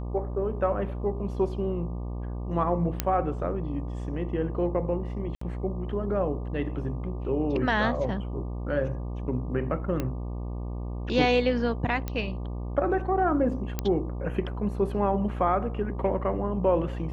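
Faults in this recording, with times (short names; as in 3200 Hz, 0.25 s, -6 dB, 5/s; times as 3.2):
buzz 60 Hz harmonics 20 -33 dBFS
3 pop -8 dBFS
5.35–5.41 gap 64 ms
10 pop -16 dBFS
12.08 pop -17 dBFS
13.79 pop -13 dBFS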